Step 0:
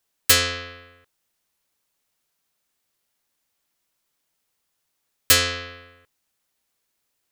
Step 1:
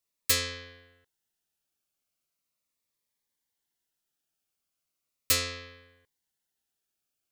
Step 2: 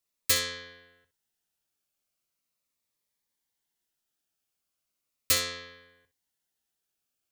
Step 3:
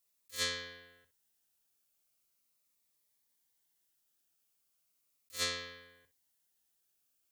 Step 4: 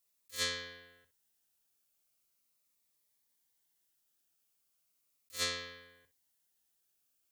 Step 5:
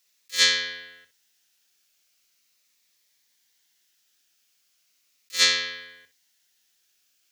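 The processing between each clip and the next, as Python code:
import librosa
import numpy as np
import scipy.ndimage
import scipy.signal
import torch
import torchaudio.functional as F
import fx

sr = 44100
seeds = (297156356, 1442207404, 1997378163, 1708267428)

y1 = fx.notch_cascade(x, sr, direction='falling', hz=0.38)
y1 = y1 * 10.0 ** (-8.5 / 20.0)
y2 = fx.room_early_taps(y1, sr, ms=(17, 64), db=(-10.0, -13.0))
y3 = fx.high_shelf(y2, sr, hz=6800.0, db=8.0)
y3 = fx.over_compress(y3, sr, threshold_db=-30.0, ratio=-0.5)
y3 = y3 * 10.0 ** (-7.0 / 20.0)
y4 = y3
y5 = scipy.signal.sosfilt(scipy.signal.butter(2, 150.0, 'highpass', fs=sr, output='sos'), y4)
y5 = fx.band_shelf(y5, sr, hz=3200.0, db=10.0, octaves=2.4)
y5 = y5 * 10.0 ** (6.5 / 20.0)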